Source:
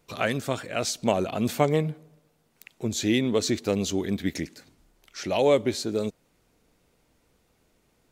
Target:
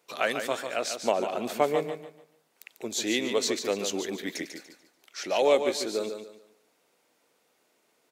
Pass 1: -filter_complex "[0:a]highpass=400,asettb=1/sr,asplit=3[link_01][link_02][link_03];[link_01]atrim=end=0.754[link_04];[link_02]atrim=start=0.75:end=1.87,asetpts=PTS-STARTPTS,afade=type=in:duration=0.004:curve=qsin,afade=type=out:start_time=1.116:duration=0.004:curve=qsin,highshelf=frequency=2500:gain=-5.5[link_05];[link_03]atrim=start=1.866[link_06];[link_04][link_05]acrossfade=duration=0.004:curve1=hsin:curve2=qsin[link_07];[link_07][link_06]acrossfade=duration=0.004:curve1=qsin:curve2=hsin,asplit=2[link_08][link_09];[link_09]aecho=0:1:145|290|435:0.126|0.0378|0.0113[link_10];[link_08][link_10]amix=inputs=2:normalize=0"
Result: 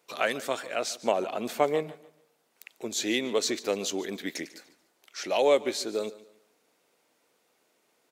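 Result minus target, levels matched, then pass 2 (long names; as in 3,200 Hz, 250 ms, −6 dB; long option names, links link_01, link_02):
echo-to-direct −10.5 dB
-filter_complex "[0:a]highpass=400,asettb=1/sr,asplit=3[link_01][link_02][link_03];[link_01]atrim=end=0.754[link_04];[link_02]atrim=start=0.75:end=1.87,asetpts=PTS-STARTPTS,afade=type=in:duration=0.004:curve=qsin,afade=type=out:start_time=1.116:duration=0.004:curve=qsin,highshelf=frequency=2500:gain=-5.5[link_05];[link_03]atrim=start=1.866[link_06];[link_04][link_05]acrossfade=duration=0.004:curve1=hsin:curve2=qsin[link_07];[link_07][link_06]acrossfade=duration=0.004:curve1=qsin:curve2=hsin,asplit=2[link_08][link_09];[link_09]aecho=0:1:145|290|435|580:0.422|0.127|0.038|0.0114[link_10];[link_08][link_10]amix=inputs=2:normalize=0"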